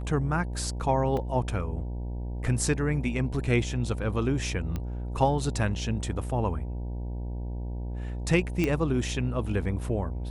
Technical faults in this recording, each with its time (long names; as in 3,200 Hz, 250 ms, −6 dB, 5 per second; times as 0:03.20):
mains buzz 60 Hz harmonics 16 −33 dBFS
0:01.17: drop-out 2.9 ms
0:04.76: click −20 dBFS
0:08.64: click −14 dBFS